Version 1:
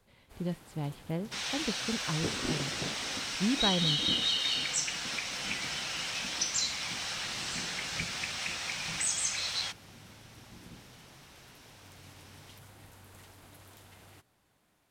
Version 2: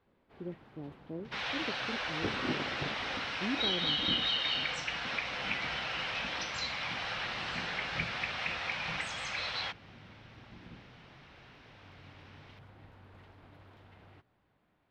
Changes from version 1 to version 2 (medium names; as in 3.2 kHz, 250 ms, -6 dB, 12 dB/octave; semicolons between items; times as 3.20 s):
speech: add band-pass filter 360 Hz, Q 2.1; second sound +6.0 dB; master: add distance through air 350 m